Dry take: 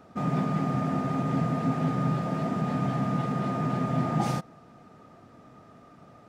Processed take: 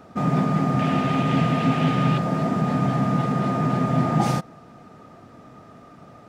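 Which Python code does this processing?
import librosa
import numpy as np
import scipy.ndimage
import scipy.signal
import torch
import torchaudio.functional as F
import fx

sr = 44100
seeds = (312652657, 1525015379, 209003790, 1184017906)

y = fx.peak_eq(x, sr, hz=2900.0, db=12.5, octaves=1.0, at=(0.79, 2.18))
y = y * 10.0 ** (6.0 / 20.0)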